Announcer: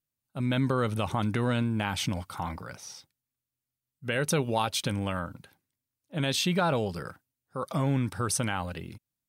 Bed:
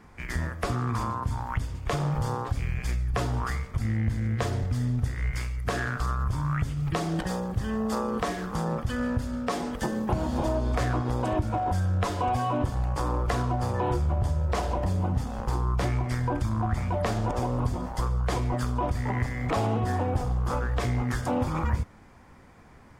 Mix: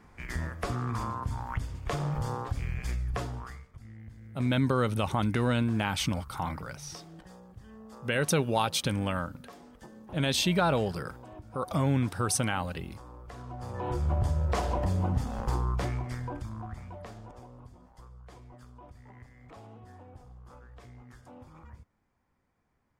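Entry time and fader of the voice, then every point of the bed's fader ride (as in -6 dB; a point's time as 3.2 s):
4.00 s, +0.5 dB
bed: 3.11 s -4 dB
3.79 s -20.5 dB
13.23 s -20.5 dB
14.11 s -1.5 dB
15.54 s -1.5 dB
17.66 s -23.5 dB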